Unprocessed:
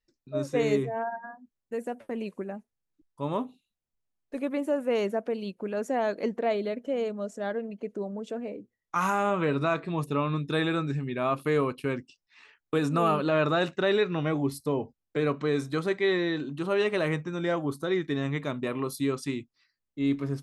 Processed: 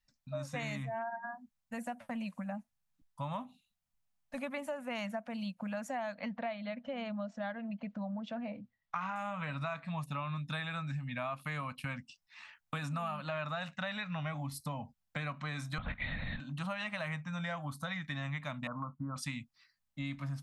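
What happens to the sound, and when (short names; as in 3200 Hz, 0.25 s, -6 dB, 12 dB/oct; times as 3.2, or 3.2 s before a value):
6.14–9.16 LPF 4500 Hz 24 dB/oct
15.78–16.4 LPC vocoder at 8 kHz whisper
18.67–19.16 rippled Chebyshev low-pass 1500 Hz, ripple 3 dB
whole clip: Chebyshev band-stop 210–690 Hz, order 2; dynamic EQ 2200 Hz, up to +4 dB, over -47 dBFS, Q 1.5; compressor 6:1, threshold -39 dBFS; gain +3 dB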